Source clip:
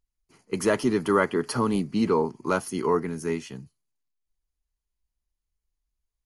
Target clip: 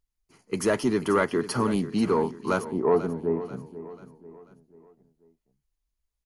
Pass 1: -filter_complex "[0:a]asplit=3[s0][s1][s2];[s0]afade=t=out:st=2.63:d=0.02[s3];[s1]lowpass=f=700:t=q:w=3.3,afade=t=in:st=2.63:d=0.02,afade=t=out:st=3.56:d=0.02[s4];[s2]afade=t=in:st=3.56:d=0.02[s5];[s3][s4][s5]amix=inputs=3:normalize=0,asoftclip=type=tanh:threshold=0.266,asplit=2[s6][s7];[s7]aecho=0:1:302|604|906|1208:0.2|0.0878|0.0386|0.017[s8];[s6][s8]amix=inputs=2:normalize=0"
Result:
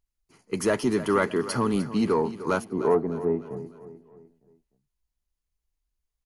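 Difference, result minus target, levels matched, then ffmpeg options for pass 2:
echo 187 ms early
-filter_complex "[0:a]asplit=3[s0][s1][s2];[s0]afade=t=out:st=2.63:d=0.02[s3];[s1]lowpass=f=700:t=q:w=3.3,afade=t=in:st=2.63:d=0.02,afade=t=out:st=3.56:d=0.02[s4];[s2]afade=t=in:st=3.56:d=0.02[s5];[s3][s4][s5]amix=inputs=3:normalize=0,asoftclip=type=tanh:threshold=0.266,asplit=2[s6][s7];[s7]aecho=0:1:489|978|1467|1956:0.2|0.0878|0.0386|0.017[s8];[s6][s8]amix=inputs=2:normalize=0"

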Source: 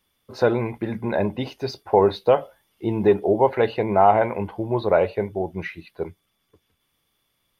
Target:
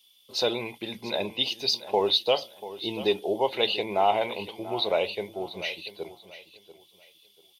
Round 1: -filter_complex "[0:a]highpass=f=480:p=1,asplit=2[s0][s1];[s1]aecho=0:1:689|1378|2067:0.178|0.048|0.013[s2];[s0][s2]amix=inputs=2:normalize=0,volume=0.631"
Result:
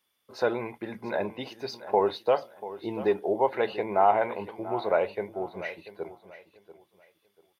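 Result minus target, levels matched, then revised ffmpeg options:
4 kHz band -16.5 dB
-filter_complex "[0:a]highpass=f=480:p=1,highshelf=f=2300:t=q:w=3:g=12,asplit=2[s0][s1];[s1]aecho=0:1:689|1378|2067:0.178|0.048|0.013[s2];[s0][s2]amix=inputs=2:normalize=0,volume=0.631"

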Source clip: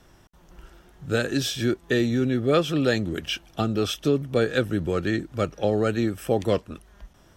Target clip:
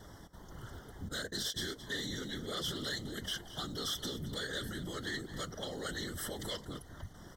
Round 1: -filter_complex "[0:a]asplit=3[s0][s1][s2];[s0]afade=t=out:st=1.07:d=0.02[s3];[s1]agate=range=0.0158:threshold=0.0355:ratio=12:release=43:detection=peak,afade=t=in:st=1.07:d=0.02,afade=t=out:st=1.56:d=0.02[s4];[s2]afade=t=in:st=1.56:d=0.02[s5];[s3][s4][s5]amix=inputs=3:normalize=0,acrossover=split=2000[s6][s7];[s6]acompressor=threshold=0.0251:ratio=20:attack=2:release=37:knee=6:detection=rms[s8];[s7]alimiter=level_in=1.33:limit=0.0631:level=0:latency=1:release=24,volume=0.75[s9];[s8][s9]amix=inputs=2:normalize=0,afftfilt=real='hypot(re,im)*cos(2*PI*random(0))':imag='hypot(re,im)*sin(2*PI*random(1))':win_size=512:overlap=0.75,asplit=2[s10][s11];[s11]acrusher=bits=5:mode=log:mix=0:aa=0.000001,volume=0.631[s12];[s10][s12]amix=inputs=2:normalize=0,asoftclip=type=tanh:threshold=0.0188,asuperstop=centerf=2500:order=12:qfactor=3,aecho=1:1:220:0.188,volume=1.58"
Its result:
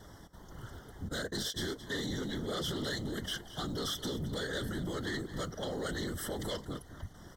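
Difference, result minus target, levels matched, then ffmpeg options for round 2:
compression: peak gain reduction -6.5 dB
-filter_complex "[0:a]asplit=3[s0][s1][s2];[s0]afade=t=out:st=1.07:d=0.02[s3];[s1]agate=range=0.0158:threshold=0.0355:ratio=12:release=43:detection=peak,afade=t=in:st=1.07:d=0.02,afade=t=out:st=1.56:d=0.02[s4];[s2]afade=t=in:st=1.56:d=0.02[s5];[s3][s4][s5]amix=inputs=3:normalize=0,acrossover=split=2000[s6][s7];[s6]acompressor=threshold=0.0112:ratio=20:attack=2:release=37:knee=6:detection=rms[s8];[s7]alimiter=level_in=1.33:limit=0.0631:level=0:latency=1:release=24,volume=0.75[s9];[s8][s9]amix=inputs=2:normalize=0,afftfilt=real='hypot(re,im)*cos(2*PI*random(0))':imag='hypot(re,im)*sin(2*PI*random(1))':win_size=512:overlap=0.75,asplit=2[s10][s11];[s11]acrusher=bits=5:mode=log:mix=0:aa=0.000001,volume=0.631[s12];[s10][s12]amix=inputs=2:normalize=0,asoftclip=type=tanh:threshold=0.0188,asuperstop=centerf=2500:order=12:qfactor=3,aecho=1:1:220:0.188,volume=1.58"

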